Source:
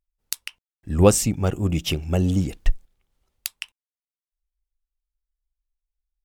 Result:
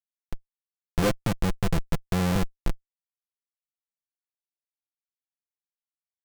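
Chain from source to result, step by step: median filter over 15 samples; Schmitt trigger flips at -19.5 dBFS; comb 5.9 ms, depth 49%; gain +3.5 dB

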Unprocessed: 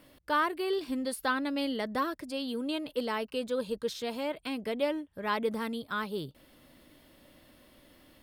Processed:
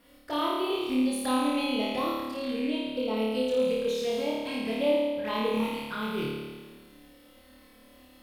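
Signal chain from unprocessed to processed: rattling part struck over -40 dBFS, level -30 dBFS; 2.18–3.17 high shelf 3400 Hz -7 dB; envelope flanger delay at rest 4.5 ms, full sweep at -29.5 dBFS; flutter echo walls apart 4.7 m, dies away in 1.4 s

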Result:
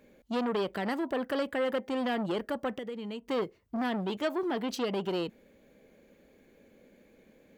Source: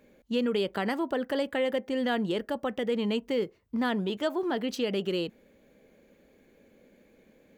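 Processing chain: 2.76–3.28 compressor 5:1, threshold -36 dBFS, peak gain reduction 11 dB; core saturation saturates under 920 Hz

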